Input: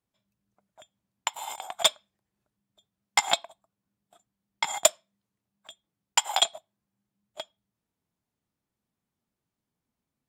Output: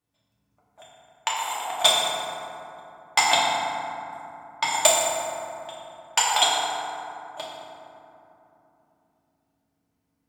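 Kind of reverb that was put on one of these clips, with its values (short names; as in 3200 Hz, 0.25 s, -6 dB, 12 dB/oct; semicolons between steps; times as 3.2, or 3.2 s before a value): FDN reverb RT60 3 s, low-frequency decay 1.3×, high-frequency decay 0.4×, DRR -6.5 dB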